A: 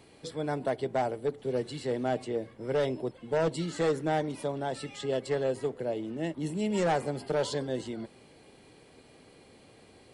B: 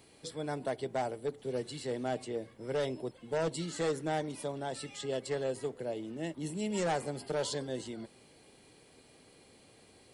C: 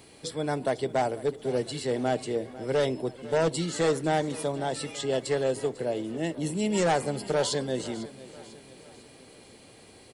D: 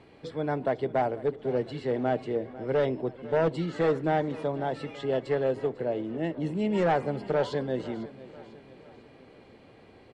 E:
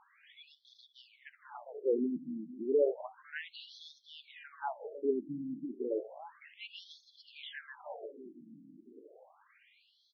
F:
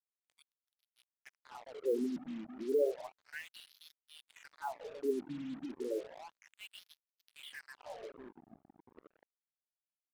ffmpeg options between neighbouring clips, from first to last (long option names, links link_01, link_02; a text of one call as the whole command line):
ffmpeg -i in.wav -af "highshelf=frequency=4500:gain=9,volume=-5dB" out.wav
ffmpeg -i in.wav -af "aecho=1:1:498|996|1494|1992:0.133|0.0653|0.032|0.0157,volume=7.5dB" out.wav
ffmpeg -i in.wav -af "lowpass=2200" out.wav
ffmpeg -i in.wav -af "afftfilt=real='re*between(b*sr/1024,220*pow(4700/220,0.5+0.5*sin(2*PI*0.32*pts/sr))/1.41,220*pow(4700/220,0.5+0.5*sin(2*PI*0.32*pts/sr))*1.41)':imag='im*between(b*sr/1024,220*pow(4700/220,0.5+0.5*sin(2*PI*0.32*pts/sr))/1.41,220*pow(4700/220,0.5+0.5*sin(2*PI*0.32*pts/sr))*1.41)':win_size=1024:overlap=0.75" out.wav
ffmpeg -i in.wav -af "highshelf=frequency=4400:gain=-5.5,acrusher=bits=7:mix=0:aa=0.5,volume=-2.5dB" out.wav